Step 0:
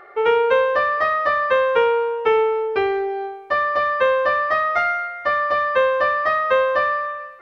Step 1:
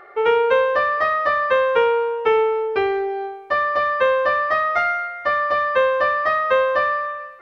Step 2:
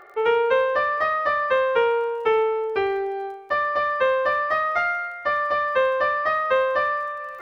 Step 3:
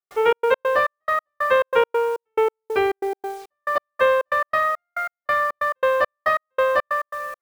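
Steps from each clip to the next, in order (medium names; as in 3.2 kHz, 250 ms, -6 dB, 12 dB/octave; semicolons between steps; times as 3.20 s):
no audible change
crackle 30 per s -39 dBFS; reverse; upward compressor, threshold -25 dBFS; reverse; trim -3 dB
bit crusher 8-bit; trance gate ".xx.x.xx..x." 139 bpm -60 dB; trim +3 dB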